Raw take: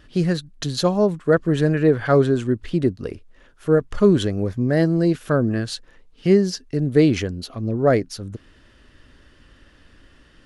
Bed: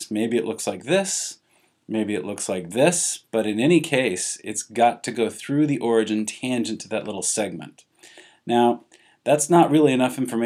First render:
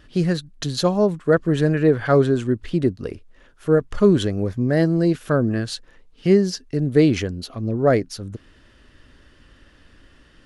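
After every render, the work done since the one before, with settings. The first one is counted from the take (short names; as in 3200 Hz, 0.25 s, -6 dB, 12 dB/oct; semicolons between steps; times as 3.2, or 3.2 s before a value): nothing audible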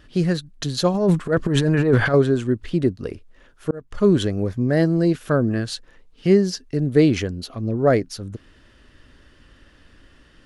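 0.94–2.14 transient shaper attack -10 dB, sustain +11 dB; 3.71–4.13 fade in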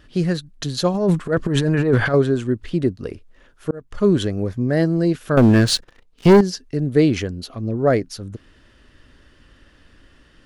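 5.37–6.41 sample leveller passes 3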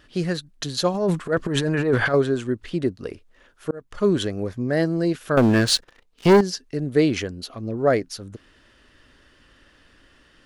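low shelf 270 Hz -8 dB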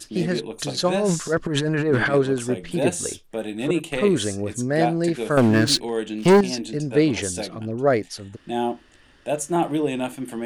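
add bed -6.5 dB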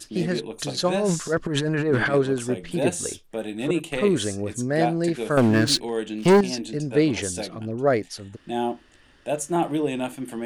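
gain -1.5 dB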